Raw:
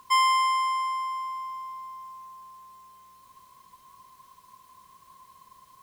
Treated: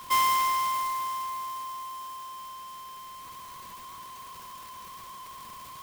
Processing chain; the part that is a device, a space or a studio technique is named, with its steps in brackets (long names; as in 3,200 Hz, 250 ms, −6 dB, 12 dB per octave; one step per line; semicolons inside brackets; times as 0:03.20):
early CD player with a faulty converter (converter with a step at zero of −37 dBFS; converter with an unsteady clock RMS 0.034 ms)
level −2.5 dB